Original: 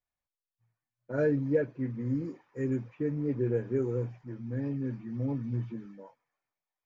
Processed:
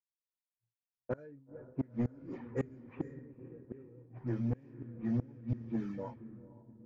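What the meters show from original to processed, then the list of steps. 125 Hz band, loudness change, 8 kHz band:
-6.5 dB, -7.0 dB, no reading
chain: inverted gate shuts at -26 dBFS, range -33 dB; echo that smears into a reverb 501 ms, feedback 53%, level -16 dB; saturation -32.5 dBFS, distortion -14 dB; level-controlled noise filter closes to 590 Hz, open at -41 dBFS; expander -59 dBFS; trim +7.5 dB

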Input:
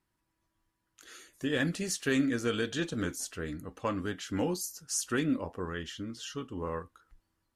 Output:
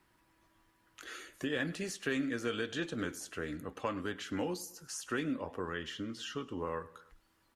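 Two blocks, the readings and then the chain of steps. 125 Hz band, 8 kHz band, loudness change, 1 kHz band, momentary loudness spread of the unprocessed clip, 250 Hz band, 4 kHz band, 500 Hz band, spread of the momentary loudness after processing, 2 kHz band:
-7.0 dB, -9.0 dB, -5.0 dB, -2.0 dB, 10 LU, -5.5 dB, -3.5 dB, -3.5 dB, 8 LU, -2.5 dB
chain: treble shelf 4.1 kHz +9 dB; feedback delay 102 ms, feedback 41%, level -21.5 dB; in parallel at +0.5 dB: compression, threshold -36 dBFS, peak gain reduction 14 dB; on the sum: tone controls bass -5 dB, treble -13 dB; three bands compressed up and down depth 40%; trim -6 dB

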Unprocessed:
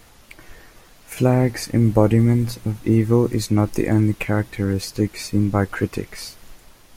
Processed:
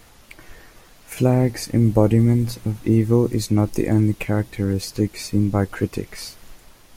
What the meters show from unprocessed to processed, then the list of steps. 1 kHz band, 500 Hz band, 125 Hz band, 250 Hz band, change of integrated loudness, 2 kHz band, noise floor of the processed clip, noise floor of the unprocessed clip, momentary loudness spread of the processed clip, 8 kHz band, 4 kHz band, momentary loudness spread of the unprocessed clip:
-2.5 dB, -0.5 dB, 0.0 dB, 0.0 dB, -0.5 dB, -4.0 dB, -50 dBFS, -50 dBFS, 10 LU, 0.0 dB, -0.5 dB, 10 LU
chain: dynamic bell 1.5 kHz, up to -5 dB, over -38 dBFS, Q 0.86

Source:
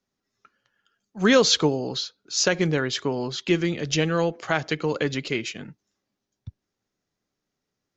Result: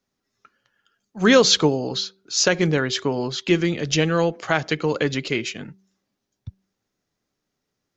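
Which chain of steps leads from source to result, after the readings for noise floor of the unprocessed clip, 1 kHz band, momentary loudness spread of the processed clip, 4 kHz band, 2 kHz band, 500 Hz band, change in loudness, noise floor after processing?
-83 dBFS, +3.0 dB, 11 LU, +3.0 dB, +3.0 dB, +3.0 dB, +3.0 dB, -80 dBFS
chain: de-hum 192.1 Hz, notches 2; trim +3 dB

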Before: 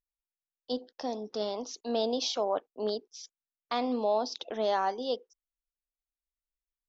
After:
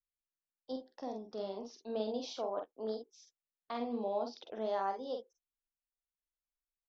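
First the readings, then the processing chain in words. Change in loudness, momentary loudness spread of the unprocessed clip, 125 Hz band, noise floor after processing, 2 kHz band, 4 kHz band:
-7.5 dB, 9 LU, no reading, under -85 dBFS, -10.0 dB, -13.5 dB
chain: treble shelf 2.3 kHz -9.5 dB; vibrato 0.43 Hz 66 cents; on a send: early reflections 46 ms -5 dB, 59 ms -15.5 dB; on the sum: trim -7.5 dB

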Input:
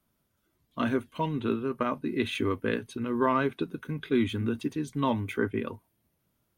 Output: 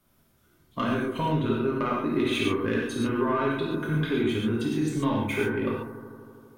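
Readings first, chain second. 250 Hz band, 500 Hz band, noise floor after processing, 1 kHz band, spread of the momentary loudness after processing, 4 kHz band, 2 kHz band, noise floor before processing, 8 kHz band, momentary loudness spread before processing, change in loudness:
+3.0 dB, +3.0 dB, -64 dBFS, +1.5 dB, 6 LU, +5.0 dB, +4.0 dB, -76 dBFS, +7.0 dB, 8 LU, +3.0 dB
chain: compression, threshold -32 dBFS, peak gain reduction 12 dB; saturation -22.5 dBFS, distortion -25 dB; bucket-brigade echo 80 ms, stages 1024, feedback 82%, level -12.5 dB; gated-style reverb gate 160 ms flat, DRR -4 dB; trim +5 dB

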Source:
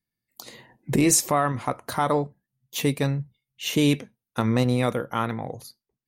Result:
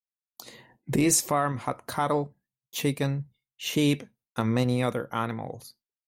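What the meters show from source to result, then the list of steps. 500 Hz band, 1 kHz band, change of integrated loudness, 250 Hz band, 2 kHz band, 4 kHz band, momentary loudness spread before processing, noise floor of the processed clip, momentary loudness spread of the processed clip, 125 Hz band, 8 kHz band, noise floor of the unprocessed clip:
-3.0 dB, -3.0 dB, -3.0 dB, -3.0 dB, -3.0 dB, -3.0 dB, 17 LU, under -85 dBFS, 17 LU, -3.0 dB, -3.0 dB, under -85 dBFS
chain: expander -55 dBFS; trim -3 dB

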